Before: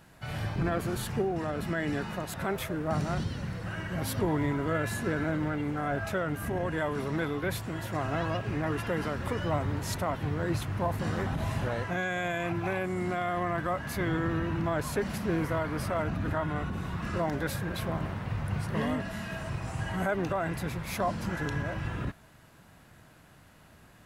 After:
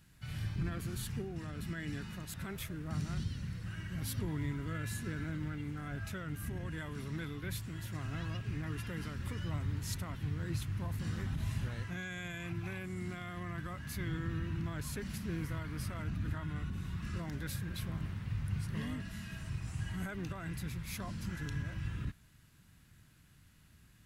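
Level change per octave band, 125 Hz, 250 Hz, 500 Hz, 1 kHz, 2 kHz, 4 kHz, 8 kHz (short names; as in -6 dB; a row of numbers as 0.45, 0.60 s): -4.5, -8.5, -17.0, -16.0, -10.0, -6.0, -4.5 dB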